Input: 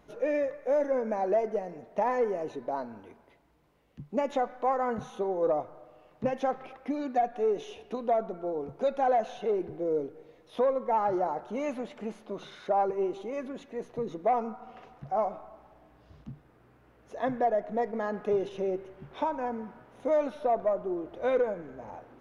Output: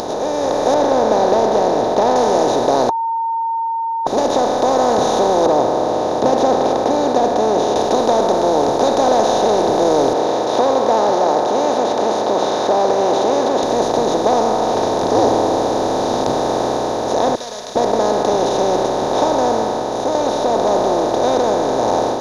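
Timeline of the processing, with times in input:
0.74–2.16 air absorption 380 m
2.89–4.07 bleep 912 Hz -20.5 dBFS
5.46–7.76 band-pass 260 Hz, Q 0.59
10.13–13.63 BPF 440–2600 Hz
14.74–16.3 frequency shift -320 Hz
17.35–17.76 inverse Chebyshev high-pass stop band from 860 Hz, stop band 70 dB
18.86–20.15 gain -6 dB
whole clip: per-bin compression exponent 0.2; AGC; resonant high shelf 3300 Hz +12 dB, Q 3; gain -1.5 dB

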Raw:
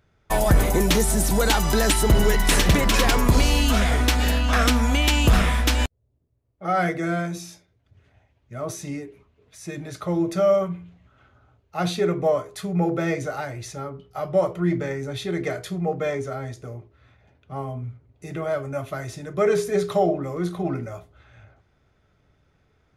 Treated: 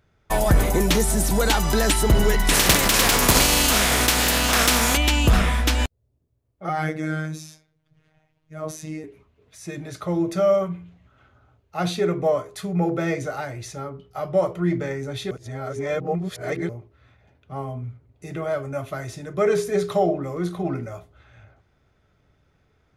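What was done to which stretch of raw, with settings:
2.53–4.96 spectral contrast lowered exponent 0.45
6.69–9.04 robotiser 156 Hz
15.31–16.69 reverse

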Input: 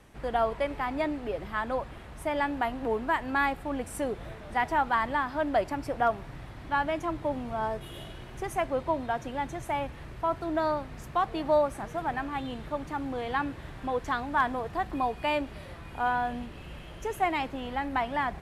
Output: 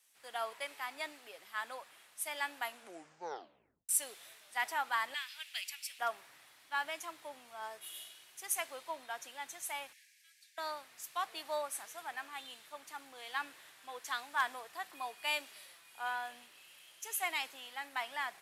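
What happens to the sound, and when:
2.66 tape stop 1.23 s
5.14–5.99 resonant high-pass 2600 Hz, resonance Q 2.6
9.93–10.58 rippled Chebyshev high-pass 1600 Hz, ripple 6 dB
whole clip: HPF 340 Hz 6 dB/oct; differentiator; three-band expander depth 40%; gain +6.5 dB

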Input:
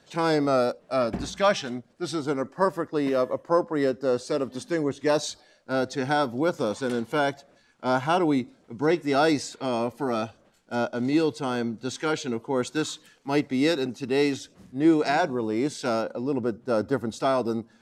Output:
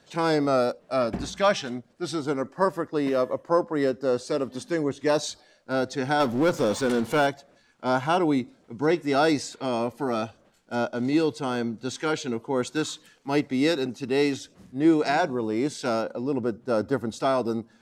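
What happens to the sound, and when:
6.2–7.27 power-law curve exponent 0.7

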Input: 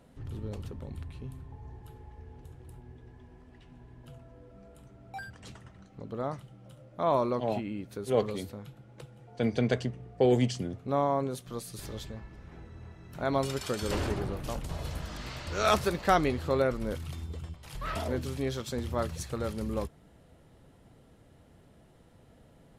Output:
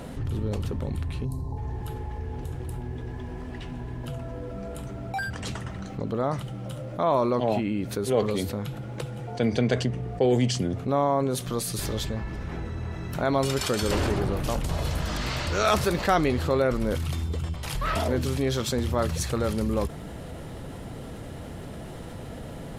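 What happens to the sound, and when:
1.25–1.57 spectral gain 1100–3800 Hz -17 dB
whole clip: fast leveller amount 50%; gain +1 dB

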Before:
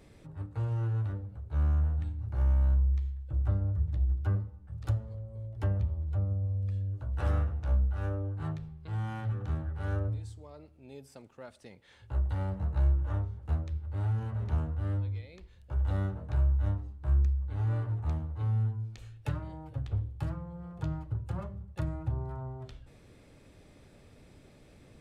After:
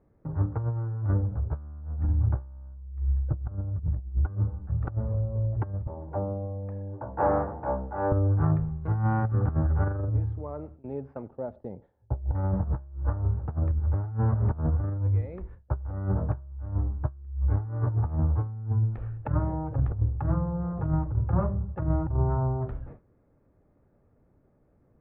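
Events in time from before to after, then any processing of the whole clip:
5.87–8.12 speaker cabinet 260–2500 Hz, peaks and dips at 560 Hz +3 dB, 880 Hz +9 dB, 1300 Hz -6 dB
11.28–12.35 band shelf 1700 Hz -12.5 dB
whole clip: gate with hold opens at -44 dBFS; LPF 1400 Hz 24 dB/oct; negative-ratio compressor -34 dBFS, ratio -0.5; gain +8.5 dB

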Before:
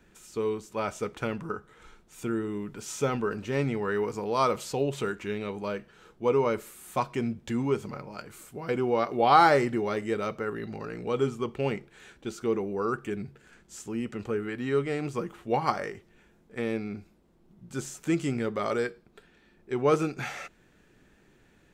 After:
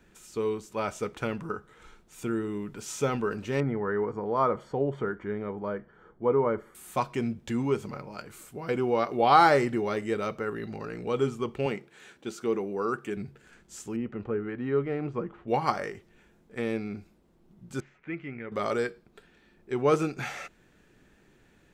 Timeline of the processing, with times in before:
3.6–6.75 polynomial smoothing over 41 samples
11.66–13.17 Bessel high-pass 160 Hz
13.96–15.48 Bessel low-pass 1500 Hz
17.8–18.52 ladder low-pass 2400 Hz, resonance 60%

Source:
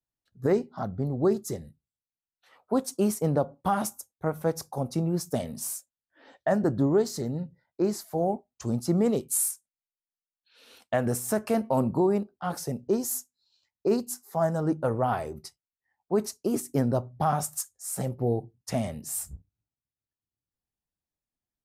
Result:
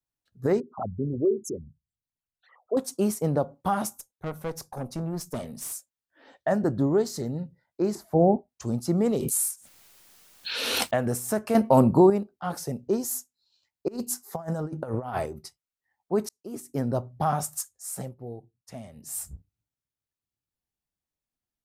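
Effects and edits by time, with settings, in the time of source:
0.6–2.77 formant sharpening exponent 3
3.97–5.72 tube stage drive 26 dB, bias 0.45
7.95–8.49 tilt shelf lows +9.5 dB, about 1300 Hz
9.11–11.01 backwards sustainer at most 23 dB/s
11.55–12.1 gain +7 dB
13.88–15.26 negative-ratio compressor -30 dBFS, ratio -0.5
16.29–17.03 fade in
17.75–19.32 dip -12.5 dB, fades 0.39 s equal-power

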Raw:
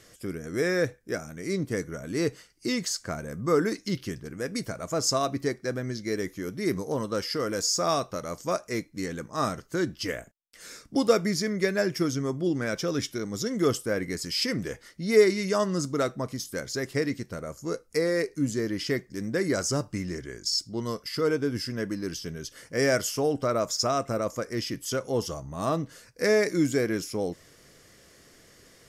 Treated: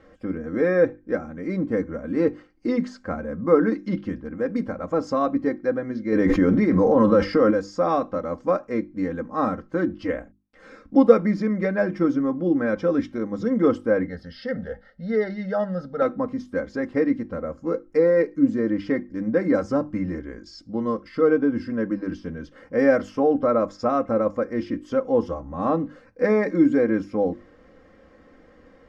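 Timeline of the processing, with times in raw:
6.12–7.51 fast leveller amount 100%
14.06–16.02 fixed phaser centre 1600 Hz, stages 8
whole clip: LPF 1300 Hz 12 dB/oct; notches 50/100/150/200/250/300/350 Hz; comb 3.8 ms, depth 76%; gain +5 dB

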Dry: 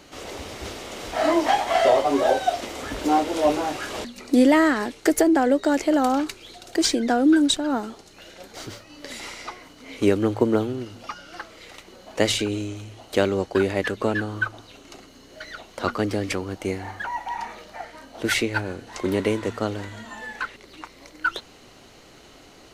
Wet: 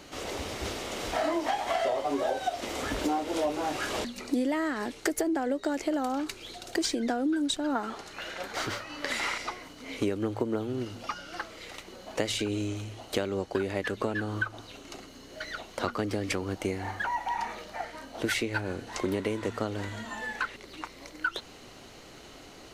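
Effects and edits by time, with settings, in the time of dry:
7.75–9.38 bell 1400 Hz +11 dB 2.2 oct
whole clip: compressor 6:1, threshold -26 dBFS

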